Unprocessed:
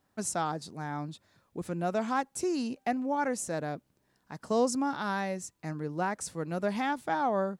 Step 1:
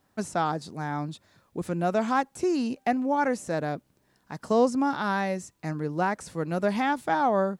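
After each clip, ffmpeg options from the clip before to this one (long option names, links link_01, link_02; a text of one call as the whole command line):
ffmpeg -i in.wav -filter_complex "[0:a]acrossover=split=3200[link_01][link_02];[link_02]acompressor=threshold=-46dB:ratio=4:attack=1:release=60[link_03];[link_01][link_03]amix=inputs=2:normalize=0,volume=5dB" out.wav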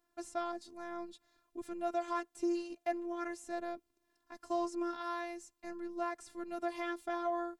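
ffmpeg -i in.wav -af "afftfilt=real='hypot(re,im)*cos(PI*b)':imag='0':win_size=512:overlap=0.75,volume=-7.5dB" out.wav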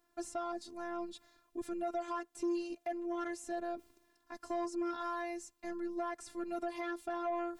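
ffmpeg -i in.wav -af "areverse,acompressor=mode=upward:threshold=-51dB:ratio=2.5,areverse,alimiter=level_in=4.5dB:limit=-24dB:level=0:latency=1:release=261,volume=-4.5dB,asoftclip=type=tanh:threshold=-32dB,volume=4dB" out.wav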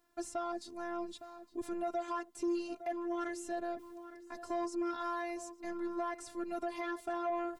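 ffmpeg -i in.wav -filter_complex "[0:a]asplit=2[link_01][link_02];[link_02]adelay=861,lowpass=frequency=1700:poles=1,volume=-12dB,asplit=2[link_03][link_04];[link_04]adelay=861,lowpass=frequency=1700:poles=1,volume=0.38,asplit=2[link_05][link_06];[link_06]adelay=861,lowpass=frequency=1700:poles=1,volume=0.38,asplit=2[link_07][link_08];[link_08]adelay=861,lowpass=frequency=1700:poles=1,volume=0.38[link_09];[link_01][link_03][link_05][link_07][link_09]amix=inputs=5:normalize=0,volume=1dB" out.wav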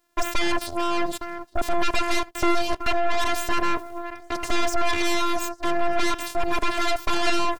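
ffmpeg -i in.wav -filter_complex "[0:a]asplit=2[link_01][link_02];[link_02]adelay=80,highpass=300,lowpass=3400,asoftclip=type=hard:threshold=-37.5dB,volume=-17dB[link_03];[link_01][link_03]amix=inputs=2:normalize=0,aeval=exprs='0.0422*(cos(1*acos(clip(val(0)/0.0422,-1,1)))-cos(1*PI/2))+0.0119*(cos(3*acos(clip(val(0)/0.0422,-1,1)))-cos(3*PI/2))+0.0211*(cos(6*acos(clip(val(0)/0.0422,-1,1)))-cos(6*PI/2))':channel_layout=same,aeval=exprs='0.0944*sin(PI/2*2*val(0)/0.0944)':channel_layout=same,volume=5.5dB" out.wav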